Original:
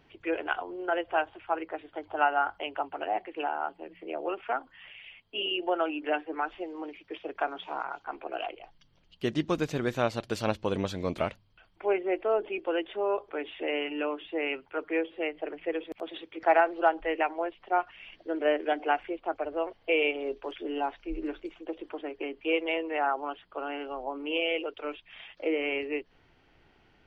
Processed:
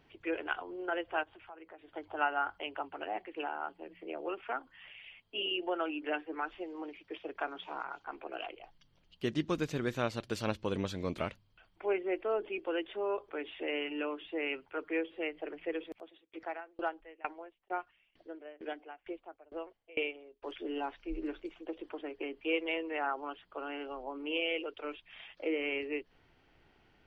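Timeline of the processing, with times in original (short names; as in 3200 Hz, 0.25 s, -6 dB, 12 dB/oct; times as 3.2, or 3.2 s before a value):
1.23–1.88 compressor 3:1, threshold -48 dBFS
15.88–20.47 dB-ramp tremolo decaying 2.2 Hz, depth 28 dB
whole clip: dynamic EQ 710 Hz, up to -5 dB, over -41 dBFS, Q 1.7; gain -3.5 dB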